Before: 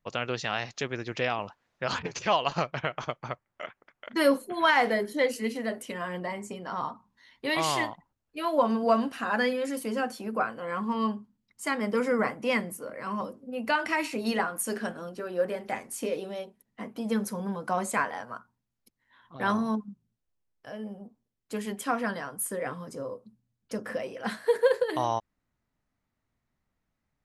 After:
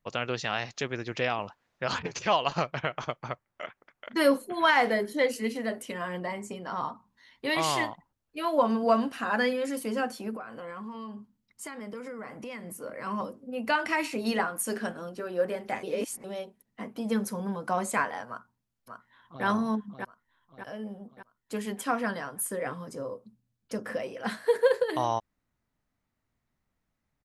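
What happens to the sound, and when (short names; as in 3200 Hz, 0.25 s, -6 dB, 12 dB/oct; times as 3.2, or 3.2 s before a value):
10.36–12.84 compressor 10:1, threshold -36 dBFS
15.83–16.24 reverse
18.28–19.45 echo throw 0.59 s, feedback 50%, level -5.5 dB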